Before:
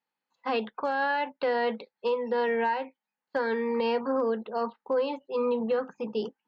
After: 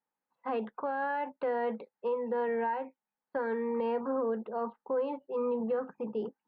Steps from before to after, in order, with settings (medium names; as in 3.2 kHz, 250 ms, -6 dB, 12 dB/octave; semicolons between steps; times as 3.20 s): low-pass 1.5 kHz 12 dB/octave; in parallel at -2.5 dB: peak limiter -30.5 dBFS, peak gain reduction 11.5 dB; on the sum: trim -6 dB